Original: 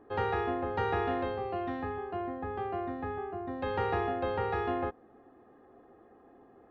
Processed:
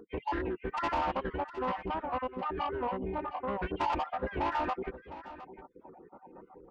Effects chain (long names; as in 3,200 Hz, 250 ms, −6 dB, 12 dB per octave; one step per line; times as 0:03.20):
time-frequency cells dropped at random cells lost 53%
Butterworth low-pass 2,900 Hz 36 dB per octave
parametric band 990 Hz +14 dB 0.52 octaves
in parallel at +1 dB: downward compressor 10 to 1, threshold −40 dBFS, peak gain reduction 18 dB
on the sum: soft clipping −26 dBFS, distortion −11 dB
phase-vocoder pitch shift with formants kept −5.5 semitones
single-tap delay 710 ms −14.5 dB
wow of a warped record 78 rpm, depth 100 cents